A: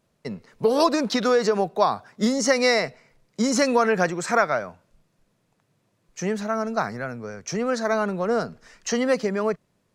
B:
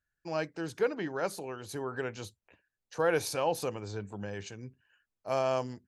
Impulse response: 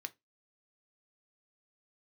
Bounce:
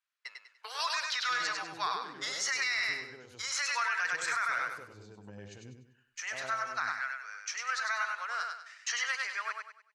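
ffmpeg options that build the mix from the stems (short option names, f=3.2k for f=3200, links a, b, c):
-filter_complex "[0:a]highpass=f=1.4k:w=0.5412,highpass=f=1.4k:w=1.3066,agate=range=-12dB:threshold=-53dB:ratio=16:detection=peak,aemphasis=mode=reproduction:type=50fm,volume=1.5dB,asplit=3[a][b][c];[b]volume=-4.5dB[d];[1:a]acompressor=threshold=-37dB:ratio=6,adelay=1050,volume=-3dB,asplit=2[e][f];[f]volume=-8.5dB[g];[c]apad=whole_len=305260[h];[e][h]sidechaincompress=threshold=-38dB:ratio=10:attack=16:release=1130[i];[d][g]amix=inputs=2:normalize=0,aecho=0:1:98|196|294|392|490:1|0.34|0.116|0.0393|0.0134[j];[a][i][j]amix=inputs=3:normalize=0,alimiter=limit=-22.5dB:level=0:latency=1:release=12"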